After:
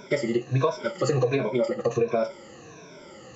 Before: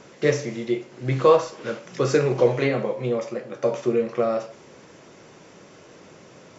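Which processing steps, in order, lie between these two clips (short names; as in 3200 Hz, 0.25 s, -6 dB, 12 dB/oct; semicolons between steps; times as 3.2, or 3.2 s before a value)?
moving spectral ripple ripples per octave 1.6, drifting -0.7 Hz, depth 20 dB; compressor 10:1, threshold -18 dBFS, peak gain reduction 12 dB; time stretch by phase-locked vocoder 0.51×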